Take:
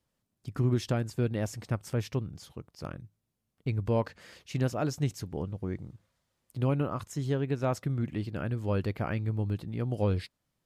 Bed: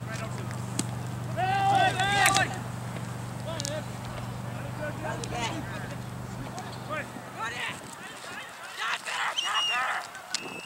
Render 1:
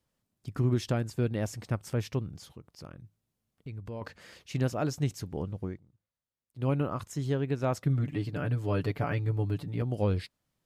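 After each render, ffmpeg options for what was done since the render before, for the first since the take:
-filter_complex "[0:a]asplit=3[s0][s1][s2];[s0]afade=t=out:st=2.52:d=0.02[s3];[s1]acompressor=threshold=0.00562:ratio=2:attack=3.2:release=140:knee=1:detection=peak,afade=t=in:st=2.52:d=0.02,afade=t=out:st=4.01:d=0.02[s4];[s2]afade=t=in:st=4.01:d=0.02[s5];[s3][s4][s5]amix=inputs=3:normalize=0,asettb=1/sr,asplit=3[s6][s7][s8];[s6]atrim=end=7.854[s9];[s7]atrim=start=7.85:end=9.82,asetpts=PTS-STARTPTS,afade=t=in:d=0.004:c=qsin,afade=t=out:st=1.966:d=0.004:c=qsin,aecho=1:1:6.9:0.72,atrim=end_sample=86877[s10];[s8]atrim=start=9.816[s11];[s9][s10]acrossfade=d=0.004:c1=hsin:c2=qsin[s12];[s12][s11]acrossfade=d=0.004:c1=qsin:c2=hsin,asplit=3[s13][s14][s15];[s13]atrim=end=5.8,asetpts=PTS-STARTPTS,afade=t=out:st=5.65:d=0.15:silence=0.112202[s16];[s14]atrim=start=5.8:end=6.54,asetpts=PTS-STARTPTS,volume=0.112[s17];[s15]atrim=start=6.54,asetpts=PTS-STARTPTS,afade=t=in:d=0.15:silence=0.112202[s18];[s16][s17][s18]concat=n=3:v=0:a=1"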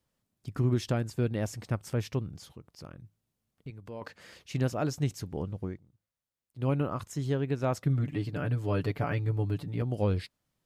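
-filter_complex "[0:a]asettb=1/sr,asplit=3[s0][s1][s2];[s0]atrim=end=3.704[s3];[s1]atrim=start=3.7:end=4.19,asetpts=PTS-STARTPTS,afade=t=in:d=0.004:c=qsin,afade=t=out:st=0.486:d=0.004:c=qsin,highpass=f=220:p=1[s4];[s2]atrim=start=4.186[s5];[s3][s4]acrossfade=d=0.004:c1=hsin:c2=qsin[s6];[s6][s5]acrossfade=d=0.004:c1=qsin:c2=hsin"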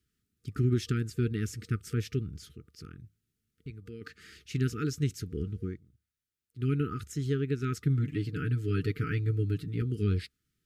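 -af "afftfilt=real='re*(1-between(b*sr/4096,470,1200))':imag='im*(1-between(b*sr/4096,470,1200))':win_size=4096:overlap=0.75,equalizer=f=71:w=4.7:g=10"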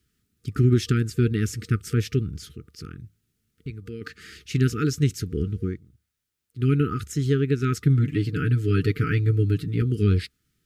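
-af "volume=2.51"

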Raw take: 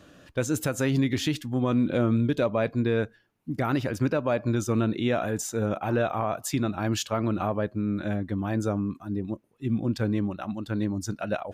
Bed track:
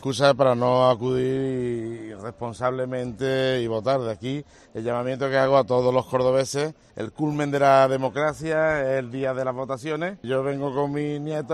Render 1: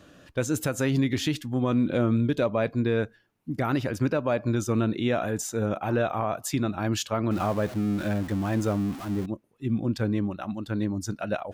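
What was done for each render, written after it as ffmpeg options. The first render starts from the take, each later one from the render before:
-filter_complex "[0:a]asettb=1/sr,asplit=3[s0][s1][s2];[s0]atrim=end=7.314[s3];[s1]atrim=start=7.31:end=9.26,asetpts=PTS-STARTPTS,afade=t=in:d=0.004:c=qsin,afade=t=out:st=1.946:d=0.004:c=qsin,aeval=exprs='val(0)+0.5*0.0188*sgn(val(0))':c=same[s4];[s2]atrim=start=9.256[s5];[s3][s4]acrossfade=d=0.004:c1=hsin:c2=qsin[s6];[s6][s5]acrossfade=d=0.004:c1=qsin:c2=hsin"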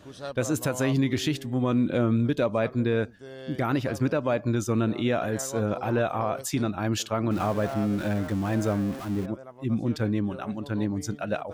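-filter_complex "[1:a]volume=0.112[s0];[0:a][s0]amix=inputs=2:normalize=0"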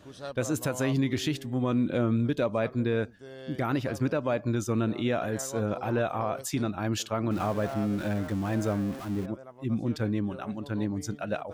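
-af "volume=0.75"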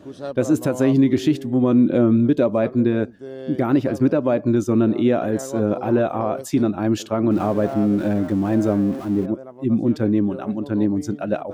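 -af "equalizer=f=330:w=0.53:g=13,bandreject=f=460:w=12"

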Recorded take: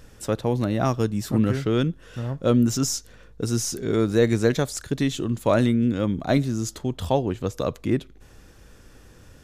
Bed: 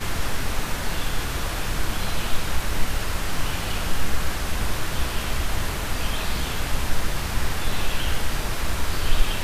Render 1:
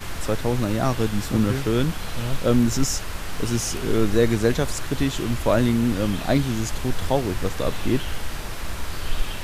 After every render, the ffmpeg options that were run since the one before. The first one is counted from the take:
-filter_complex "[1:a]volume=0.562[s0];[0:a][s0]amix=inputs=2:normalize=0"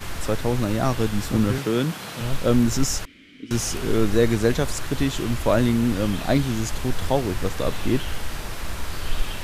-filter_complex "[0:a]asettb=1/sr,asplit=3[s0][s1][s2];[s0]atrim=end=1.584[s3];[s1]atrim=start=1.58:end=2.21,asetpts=PTS-STARTPTS,afade=t=in:d=0.004:c=qsin,afade=t=out:st=0.626:d=0.004:c=qsin,highpass=f=130:w=0.5412,highpass=f=130:w=1.3066[s4];[s2]atrim=start=2.206[s5];[s3][s4]acrossfade=d=0.004:c1=hsin:c2=qsin[s6];[s6][s5]acrossfade=d=0.004:c1=qsin:c2=hsin,asettb=1/sr,asplit=3[s7][s8][s9];[s7]atrim=end=3.054[s10];[s8]atrim=start=3.05:end=3.51,asetpts=PTS-STARTPTS,afade=t=in:d=0.004:c=qsin,afade=t=out:st=0.456:d=0.004:c=qsin,asplit=3[s11][s12][s13];[s11]bandpass=f=270:t=q:w=8,volume=1[s14];[s12]bandpass=f=2290:t=q:w=8,volume=0.501[s15];[s13]bandpass=f=3010:t=q:w=8,volume=0.355[s16];[s14][s15][s16]amix=inputs=3:normalize=0[s17];[s9]atrim=start=3.506[s18];[s10][s17]acrossfade=d=0.004:c1=hsin:c2=qsin[s19];[s19][s18]acrossfade=d=0.004:c1=qsin:c2=hsin"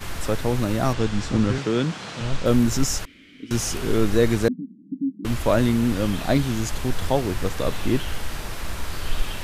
-filter_complex "[0:a]asettb=1/sr,asplit=3[s0][s1][s2];[s0]atrim=end=0.934[s3];[s1]atrim=start=0.93:end=2.46,asetpts=PTS-STARTPTS,afade=t=in:d=0.004:c=qsin,afade=t=out:st=1.526:d=0.004:c=qsin,lowpass=f=7600:w=0.5412,lowpass=f=7600:w=1.3066[s4];[s2]atrim=start=2.456[s5];[s3][s4]acrossfade=d=0.004:c1=hsin:c2=qsin[s6];[s6][s5]acrossfade=d=0.004:c1=qsin:c2=hsin,asettb=1/sr,asplit=3[s7][s8][s9];[s7]atrim=end=4.484[s10];[s8]atrim=start=4.48:end=5.25,asetpts=PTS-STARTPTS,afade=t=in:d=0.004:c=qsin,afade=t=out:st=0.766:d=0.004:c=qsin,asuperpass=centerf=230:order=8:qfactor=2[s11];[s9]atrim=start=5.246[s12];[s10][s11]acrossfade=d=0.004:c1=hsin:c2=qsin[s13];[s13][s12]acrossfade=d=0.004:c1=qsin:c2=hsin"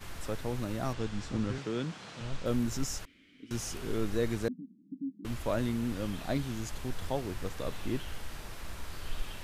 -af "volume=0.251"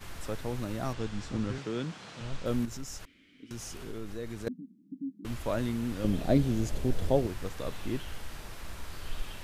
-filter_complex "[0:a]asettb=1/sr,asplit=3[s0][s1][s2];[s0]atrim=end=2.654[s3];[s1]atrim=start=2.65:end=4.47,asetpts=PTS-STARTPTS,afade=t=in:d=0.004:c=qsin,afade=t=out:st=1.816:d=0.004:c=qsin,acompressor=threshold=0.01:ratio=2:attack=3.2:release=140:knee=1:detection=peak[s4];[s2]atrim=start=4.466[s5];[s3][s4]acrossfade=d=0.004:c1=hsin:c2=qsin[s6];[s6][s5]acrossfade=d=0.004:c1=qsin:c2=hsin,asettb=1/sr,asplit=3[s7][s8][s9];[s7]atrim=end=6.044[s10];[s8]atrim=start=6.04:end=7.27,asetpts=PTS-STARTPTS,afade=t=in:d=0.004:c=qsin,afade=t=out:st=1.226:d=0.004:c=qsin,lowshelf=f=730:t=q:w=1.5:g=7.5[s11];[s9]atrim=start=7.266[s12];[s10][s11]acrossfade=d=0.004:c1=hsin:c2=qsin[s13];[s13][s12]acrossfade=d=0.004:c1=qsin:c2=hsin"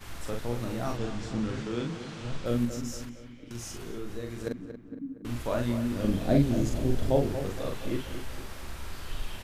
-filter_complex "[0:a]asplit=2[s0][s1];[s1]adelay=42,volume=0.668[s2];[s0][s2]amix=inputs=2:normalize=0,asplit=2[s3][s4];[s4]adelay=232,lowpass=f=2400:p=1,volume=0.316,asplit=2[s5][s6];[s6]adelay=232,lowpass=f=2400:p=1,volume=0.53,asplit=2[s7][s8];[s8]adelay=232,lowpass=f=2400:p=1,volume=0.53,asplit=2[s9][s10];[s10]adelay=232,lowpass=f=2400:p=1,volume=0.53,asplit=2[s11][s12];[s12]adelay=232,lowpass=f=2400:p=1,volume=0.53,asplit=2[s13][s14];[s14]adelay=232,lowpass=f=2400:p=1,volume=0.53[s15];[s5][s7][s9][s11][s13][s15]amix=inputs=6:normalize=0[s16];[s3][s16]amix=inputs=2:normalize=0"

